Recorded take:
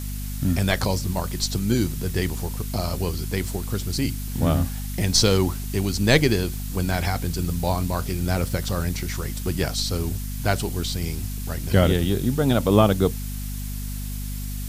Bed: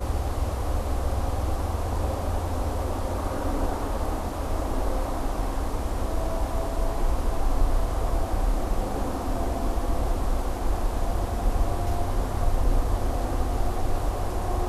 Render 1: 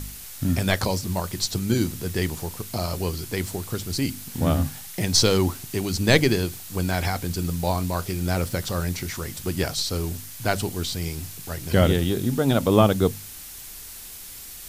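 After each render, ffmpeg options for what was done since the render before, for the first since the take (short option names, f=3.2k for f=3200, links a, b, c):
-af "bandreject=f=50:t=h:w=4,bandreject=f=100:t=h:w=4,bandreject=f=150:t=h:w=4,bandreject=f=200:t=h:w=4,bandreject=f=250:t=h:w=4"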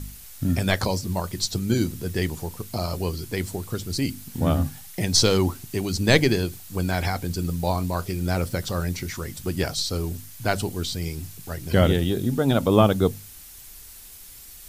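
-af "afftdn=nr=6:nf=-40"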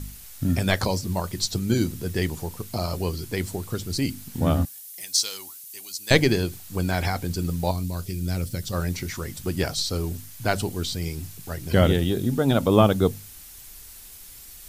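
-filter_complex "[0:a]asettb=1/sr,asplit=3[a][b][c];[a]atrim=end=4.654[d];[b]atrim=start=4.65:end=6.11,asetpts=PTS-STARTPTS,afade=t=in:d=0.004:c=qsin,afade=t=out:st=1.456:d=0.004:c=qsin,aderivative[e];[c]atrim=start=6.106[f];[d][e]acrossfade=d=0.004:c1=hsin:c2=qsin[g];[g][f]acrossfade=d=0.004:c1=qsin:c2=hsin,asettb=1/sr,asplit=3[h][i][j];[h]atrim=end=7.714[k];[i]atrim=start=7.71:end=8.73,asetpts=PTS-STARTPTS,afade=t=in:d=0.004:c=qsin,afade=t=out:st=1.016:d=0.004:c=qsin,equalizer=f=910:t=o:w=2.5:g=-13[l];[j]atrim=start=8.726[m];[k][l]acrossfade=d=0.004:c1=hsin:c2=qsin[n];[n][m]acrossfade=d=0.004:c1=qsin:c2=hsin"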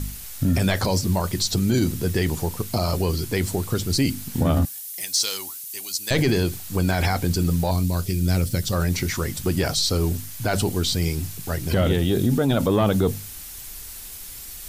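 -af "acontrast=65,alimiter=limit=-12dB:level=0:latency=1:release=19"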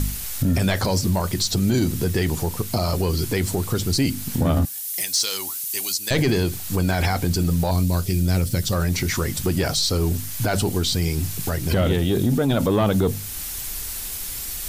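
-af "acontrast=86,alimiter=limit=-12.5dB:level=0:latency=1:release=357"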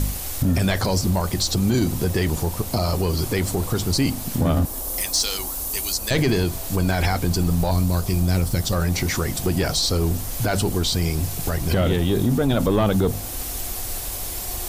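-filter_complex "[1:a]volume=-9dB[a];[0:a][a]amix=inputs=2:normalize=0"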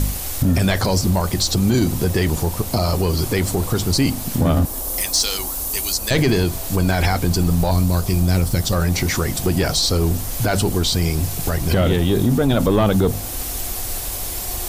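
-af "volume=3dB"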